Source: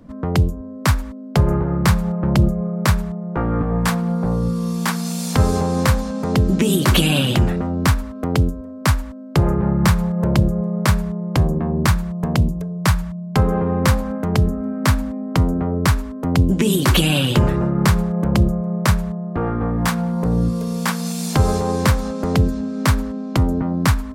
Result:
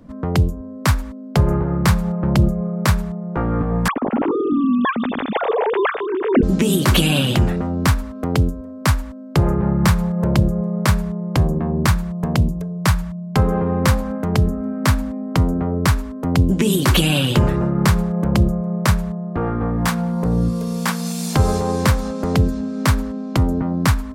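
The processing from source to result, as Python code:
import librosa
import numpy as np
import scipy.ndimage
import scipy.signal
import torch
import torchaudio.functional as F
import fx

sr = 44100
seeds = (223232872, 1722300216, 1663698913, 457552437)

y = fx.sine_speech(x, sr, at=(3.88, 6.43))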